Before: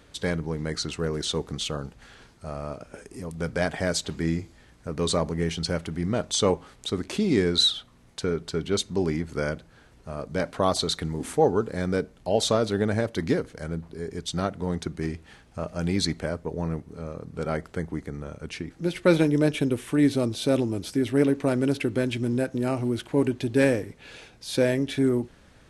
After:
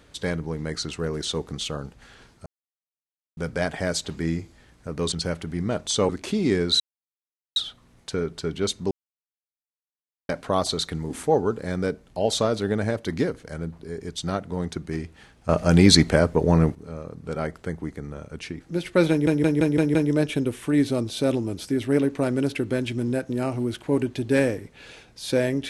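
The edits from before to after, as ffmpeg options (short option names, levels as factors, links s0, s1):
-filter_complex "[0:a]asplit=15[s0][s1][s2][s3][s4][s5][s6][s7][s8][s9][s10][s11][s12][s13][s14];[s0]atrim=end=2.46,asetpts=PTS-STARTPTS,afade=t=out:st=2.456:d=0.004:c=hsin[s15];[s1]atrim=start=2.46:end=3.37,asetpts=PTS-STARTPTS,volume=0[s16];[s2]atrim=start=3.37:end=5.122,asetpts=PTS-STARTPTS,afade=t=in:d=0.004:c=hsin[s17];[s3]atrim=start=5.558:end=6.532[s18];[s4]atrim=start=6.948:end=7.66,asetpts=PTS-STARTPTS,afade=t=out:st=0.708:d=0.004:c=hsin,apad=pad_dur=0.76[s19];[s5]atrim=start=7.66:end=9.01,asetpts=PTS-STARTPTS,afade=t=in:d=0.004:c=hsin,afade=t=out:st=1.346:d=0.004:c=hsin[s20];[s6]atrim=start=9.01:end=10.39,asetpts=PTS-STARTPTS,volume=0[s21];[s7]atrim=start=10.39:end=15.592,asetpts=PTS-STARTPTS,afade=t=in:d=0.004:c=hsin[s22];[s8]atrim=start=15.588:end=16.852,asetpts=PTS-STARTPTS,volume=3.55[s23];[s9]atrim=start=16.848:end=19.372[s24];[s10]atrim=start=19.198:end=19.372[s25];[s11]atrim=start=19.198:end=19.372[s26];[s12]atrim=start=19.198:end=19.372[s27];[s13]atrim=start=19.198:end=19.372[s28];[s14]atrim=start=19.198[s29];[s15][s16][s17]concat=n=3:v=0:a=1[s30];[s30][s18]acrossfade=d=0.004:c1=hsin:c2=hsin[s31];[s19][s20][s21][s22]concat=n=4:v=0:a=1[s32];[s31][s32]acrossfade=d=0.004:c1=hsin:c2=hsin[s33];[s33][s23]acrossfade=d=0.004:c1=hsin:c2=hsin[s34];[s34][s24]acrossfade=d=0.004:c1=hsin:c2=hsin[s35];[s35][s25]acrossfade=d=0.004:c1=hsin:c2=hsin[s36];[s36][s26]acrossfade=d=0.004:c1=hsin:c2=hsin[s37];[s37][s27]acrossfade=d=0.004:c1=hsin:c2=hsin[s38];[s38][s28]acrossfade=d=0.004:c1=hsin:c2=hsin[s39];[s39][s29]acrossfade=d=0.004:c1=hsin:c2=hsin"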